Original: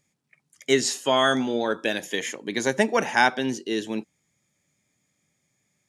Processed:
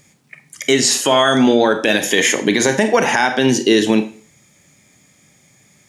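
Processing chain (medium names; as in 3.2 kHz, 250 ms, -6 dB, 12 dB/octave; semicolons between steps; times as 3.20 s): compression 5:1, threshold -28 dBFS, peak gain reduction 13.5 dB; reverberation RT60 0.45 s, pre-delay 29 ms, DRR 9.5 dB; loudness maximiser +21.5 dB; trim -2 dB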